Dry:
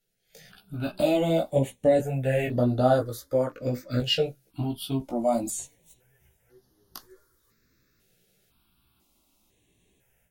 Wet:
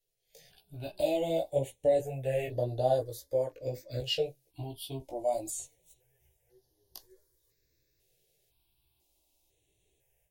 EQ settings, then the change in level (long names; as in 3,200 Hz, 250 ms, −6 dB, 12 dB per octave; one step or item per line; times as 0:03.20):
phaser with its sweep stopped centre 540 Hz, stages 4
−4.5 dB